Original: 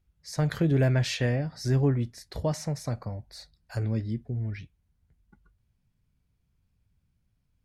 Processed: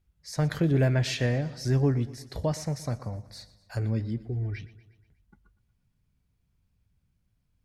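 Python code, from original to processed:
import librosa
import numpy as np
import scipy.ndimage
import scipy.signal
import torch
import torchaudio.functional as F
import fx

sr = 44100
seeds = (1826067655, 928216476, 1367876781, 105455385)

p1 = fx.comb(x, sr, ms=2.6, depth=0.74, at=(4.2, 4.61))
y = p1 + fx.echo_feedback(p1, sr, ms=120, feedback_pct=56, wet_db=-18.0, dry=0)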